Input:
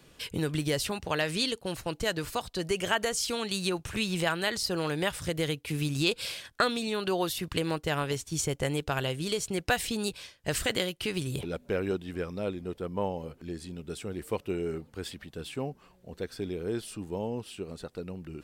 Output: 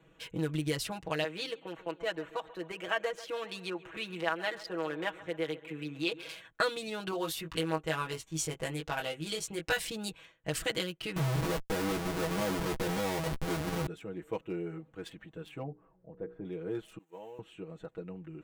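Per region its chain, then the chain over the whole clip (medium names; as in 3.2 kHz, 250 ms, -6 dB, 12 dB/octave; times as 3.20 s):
1.24–6.29 s: three-band isolator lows -15 dB, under 270 Hz, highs -13 dB, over 3.7 kHz + feedback delay 136 ms, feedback 54%, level -17 dB
7.11–9.90 s: peaking EQ 150 Hz -5 dB 2.9 oct + doubling 19 ms -4 dB
11.16–13.87 s: RIAA curve playback + Schmitt trigger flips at -41 dBFS + doubling 14 ms -7.5 dB
15.63–16.45 s: low-pass 1 kHz + hum notches 60/120/180/240/300/360/420/480 Hz
16.98–17.39 s: zero-crossing glitches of -39.5 dBFS + high-pass 1.2 kHz 6 dB/octave + expander -43 dBFS
whole clip: local Wiener filter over 9 samples; bass shelf 200 Hz -3.5 dB; comb 6.2 ms, depth 84%; trim -5.5 dB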